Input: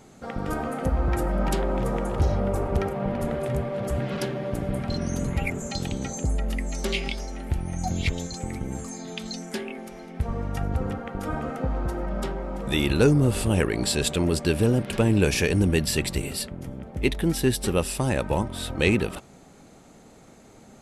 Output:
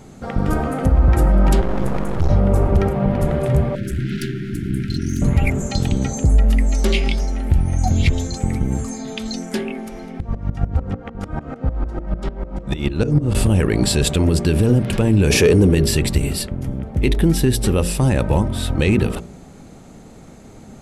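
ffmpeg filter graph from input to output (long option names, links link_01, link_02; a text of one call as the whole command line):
ffmpeg -i in.wav -filter_complex "[0:a]asettb=1/sr,asplit=3[link_01][link_02][link_03];[link_01]atrim=end=1.614[link_04];[link_02]atrim=start=1.61:end=2.3,asetpts=PTS-STARTPTS,afade=type=in:duration=0.004:curve=qsin,afade=type=out:start_time=0.686:duration=0.004:curve=qsin,highpass=frequency=61:width=0.5412,highpass=frequency=61:width=1.3066,aeval=exprs='max(val(0),0)':channel_layout=same[link_05];[link_03]atrim=start=2.296[link_06];[link_04][link_05]acrossfade=duration=0.004:curve1=hsin:curve2=qsin[link_07];[link_07][link_06]acrossfade=duration=0.004:curve1=qsin:curve2=hsin,asettb=1/sr,asplit=3[link_08][link_09][link_10];[link_08]atrim=end=3.754[link_11];[link_09]atrim=start=3.75:end=5.22,asetpts=PTS-STARTPTS,afade=type=in:duration=0.004:curve=qsin,afade=type=out:start_time=1.466:duration=0.004:curve=qsin,aeval=exprs='clip(val(0),-1,0.0211)':channel_layout=same,asuperstop=centerf=740:order=20:qfactor=0.74,lowshelf=frequency=63:gain=-12[link_12];[link_10]atrim=start=5.216[link_13];[link_11][link_12]acrossfade=duration=0.004:curve1=hsin:curve2=qsin[link_14];[link_14][link_13]acrossfade=duration=0.004:curve1=qsin:curve2=hsin,asettb=1/sr,asplit=3[link_15][link_16][link_17];[link_15]atrim=end=10.204[link_18];[link_16]atrim=start=10.2:end=13.35,asetpts=PTS-STARTPTS,afade=type=in:duration=0.004:curve=qsin,afade=type=out:start_time=3.146:duration=0.004:curve=qsin,lowpass=7100,aeval=exprs='val(0)*pow(10,-23*if(lt(mod(-6.7*n/s,1),2*abs(-6.7)/1000),1-mod(-6.7*n/s,1)/(2*abs(-6.7)/1000),(mod(-6.7*n/s,1)-2*abs(-6.7)/1000)/(1-2*abs(-6.7)/1000))/20)':channel_layout=same[link_19];[link_17]atrim=start=13.346[link_20];[link_18][link_19]acrossfade=duration=0.004:curve1=hsin:curve2=qsin[link_21];[link_21][link_20]acrossfade=duration=0.004:curve1=qsin:curve2=hsin,asettb=1/sr,asplit=3[link_22][link_23][link_24];[link_22]atrim=end=15.304[link_25];[link_23]atrim=start=15.3:end=15.75,asetpts=PTS-STARTPTS,afade=type=in:duration=0.004:curve=qsin,afade=type=out:start_time=0.446:duration=0.004:curve=qsin,highpass=frequency=110:poles=1,equalizer=frequency=420:width_type=o:width=0.59:gain=9.5,acontrast=75[link_26];[link_24]atrim=start=15.746[link_27];[link_25][link_26]acrossfade=duration=0.004:curve1=hsin:curve2=qsin[link_28];[link_28][link_27]acrossfade=duration=0.004:curve1=qsin:curve2=hsin,lowshelf=frequency=270:gain=9.5,bandreject=frequency=57.98:width_type=h:width=4,bandreject=frequency=115.96:width_type=h:width=4,bandreject=frequency=173.94:width_type=h:width=4,bandreject=frequency=231.92:width_type=h:width=4,bandreject=frequency=289.9:width_type=h:width=4,bandreject=frequency=347.88:width_type=h:width=4,bandreject=frequency=405.86:width_type=h:width=4,bandreject=frequency=463.84:width_type=h:width=4,bandreject=frequency=521.82:width_type=h:width=4,bandreject=frequency=579.8:width_type=h:width=4,bandreject=frequency=637.78:width_type=h:width=4,alimiter=level_in=10dB:limit=-1dB:release=50:level=0:latency=1,volume=-5dB" out.wav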